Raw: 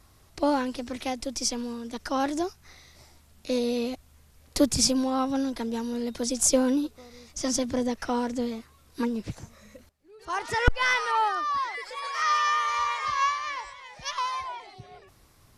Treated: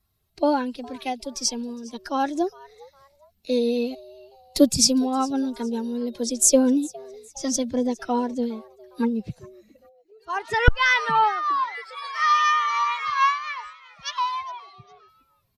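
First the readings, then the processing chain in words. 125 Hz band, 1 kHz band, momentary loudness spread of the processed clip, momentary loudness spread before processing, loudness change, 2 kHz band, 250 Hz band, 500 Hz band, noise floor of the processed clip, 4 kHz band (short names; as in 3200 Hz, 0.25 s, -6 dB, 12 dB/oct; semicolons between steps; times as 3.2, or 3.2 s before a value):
+4.5 dB, +4.0 dB, 16 LU, 14 LU, +4.0 dB, +4.5 dB, +4.0 dB, +4.0 dB, -66 dBFS, +3.0 dB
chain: per-bin expansion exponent 1.5; wow and flutter 26 cents; frequency-shifting echo 0.409 s, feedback 34%, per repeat +140 Hz, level -22.5 dB; gain +6.5 dB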